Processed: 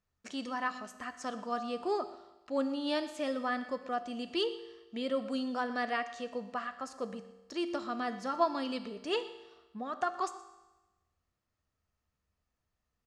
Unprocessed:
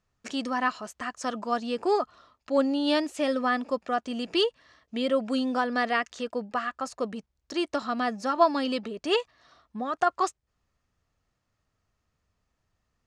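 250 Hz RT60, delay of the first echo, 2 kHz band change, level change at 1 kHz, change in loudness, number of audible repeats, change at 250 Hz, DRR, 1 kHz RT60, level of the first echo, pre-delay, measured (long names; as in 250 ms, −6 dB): 1.1 s, 122 ms, −7.5 dB, −7.5 dB, −7.5 dB, 1, −7.5 dB, 9.5 dB, 1.1 s, −18.5 dB, 4 ms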